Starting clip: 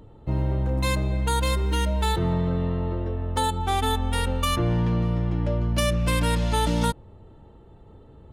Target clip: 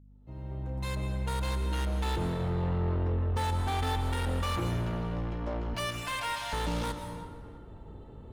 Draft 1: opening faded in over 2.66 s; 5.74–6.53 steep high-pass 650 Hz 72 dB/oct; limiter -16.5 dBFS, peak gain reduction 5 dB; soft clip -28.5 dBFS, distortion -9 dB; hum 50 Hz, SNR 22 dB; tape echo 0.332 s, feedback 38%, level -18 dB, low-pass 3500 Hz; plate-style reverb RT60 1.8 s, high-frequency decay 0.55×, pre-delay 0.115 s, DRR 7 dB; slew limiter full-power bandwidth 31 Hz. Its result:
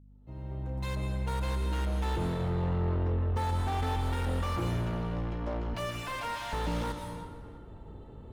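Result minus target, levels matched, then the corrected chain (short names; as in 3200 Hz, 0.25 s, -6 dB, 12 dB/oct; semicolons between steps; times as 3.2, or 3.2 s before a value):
slew limiter: distortion +7 dB
opening faded in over 2.66 s; 5.74–6.53 steep high-pass 650 Hz 72 dB/oct; limiter -16.5 dBFS, peak gain reduction 5 dB; soft clip -28.5 dBFS, distortion -9 dB; hum 50 Hz, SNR 22 dB; tape echo 0.332 s, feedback 38%, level -18 dB, low-pass 3500 Hz; plate-style reverb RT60 1.8 s, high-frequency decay 0.55×, pre-delay 0.115 s, DRR 7 dB; slew limiter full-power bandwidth 73 Hz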